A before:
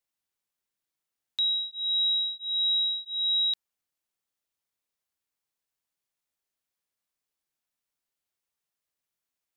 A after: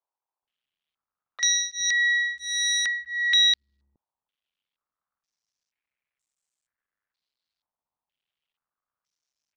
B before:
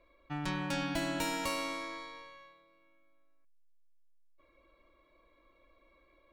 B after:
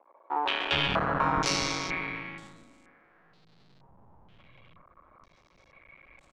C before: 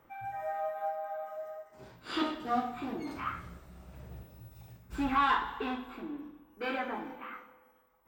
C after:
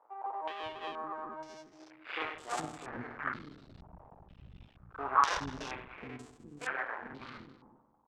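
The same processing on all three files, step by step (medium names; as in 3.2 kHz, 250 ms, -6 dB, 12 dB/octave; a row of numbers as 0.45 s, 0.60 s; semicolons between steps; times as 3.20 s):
cycle switcher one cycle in 2, muted; bands offset in time highs, lows 420 ms, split 350 Hz; step-sequenced low-pass 2.1 Hz 920–7800 Hz; peak normalisation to -12 dBFS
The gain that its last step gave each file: +2.0 dB, +8.0 dB, -3.0 dB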